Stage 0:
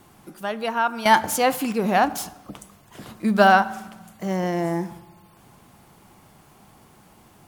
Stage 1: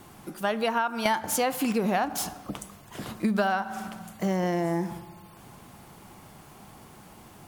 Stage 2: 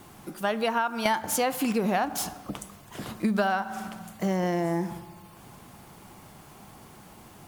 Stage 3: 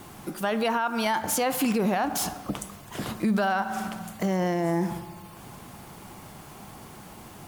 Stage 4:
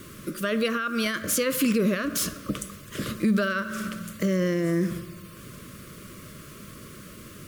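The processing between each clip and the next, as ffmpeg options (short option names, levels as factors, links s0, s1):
-af "acompressor=threshold=0.0562:ratio=12,volume=1.41"
-af "acrusher=bits=9:mix=0:aa=0.000001"
-af "alimiter=limit=0.0841:level=0:latency=1:release=22,volume=1.68"
-af "asuperstop=centerf=820:order=8:qfactor=1.7,volume=1.26"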